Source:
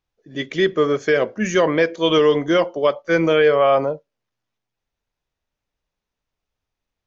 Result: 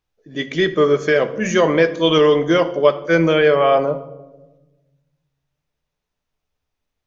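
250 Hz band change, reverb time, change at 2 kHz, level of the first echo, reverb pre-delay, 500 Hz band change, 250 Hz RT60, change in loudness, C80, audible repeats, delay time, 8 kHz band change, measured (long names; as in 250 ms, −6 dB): +2.0 dB, 1.2 s, +2.0 dB, no echo audible, 7 ms, +2.0 dB, 1.7 s, +2.0 dB, 16.5 dB, no echo audible, no echo audible, can't be measured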